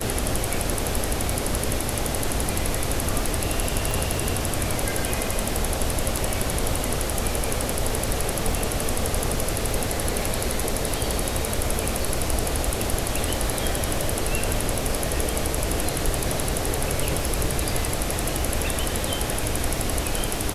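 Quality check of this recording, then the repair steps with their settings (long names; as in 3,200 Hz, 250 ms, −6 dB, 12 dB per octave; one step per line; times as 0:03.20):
surface crackle 42 per second −31 dBFS
0:03.91: click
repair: click removal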